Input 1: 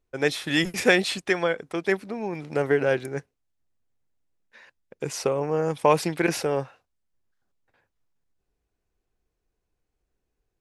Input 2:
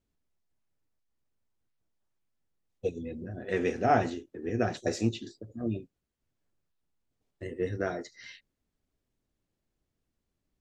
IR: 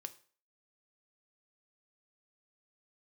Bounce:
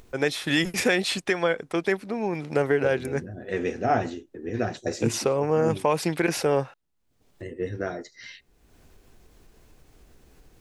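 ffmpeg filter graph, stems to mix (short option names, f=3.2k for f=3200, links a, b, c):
-filter_complex "[0:a]volume=3dB,asplit=3[a][b][c];[a]atrim=end=6.74,asetpts=PTS-STARTPTS,afade=t=out:st=6.736:d=0.004:c=hsin[d];[b]atrim=start=6.74:end=7.72,asetpts=PTS-STARTPTS,volume=0[e];[c]atrim=start=7.72,asetpts=PTS-STARTPTS,afade=t=in:d=0.004:c=hsin[f];[d][e][f]concat=n=3:v=0:a=1[g];[1:a]volume=0.5dB,asplit=2[h][i];[i]volume=-17dB[j];[2:a]atrim=start_sample=2205[k];[j][k]afir=irnorm=-1:irlink=0[l];[g][h][l]amix=inputs=3:normalize=0,acompressor=mode=upward:threshold=-36dB:ratio=2.5,alimiter=limit=-11dB:level=0:latency=1:release=230"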